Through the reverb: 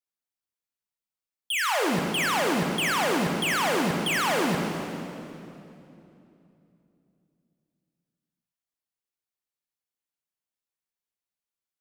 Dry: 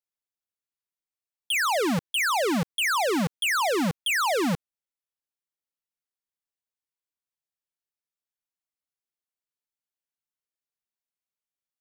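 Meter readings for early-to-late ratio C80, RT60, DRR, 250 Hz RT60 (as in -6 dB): 3.5 dB, 2.9 s, 1.5 dB, 3.7 s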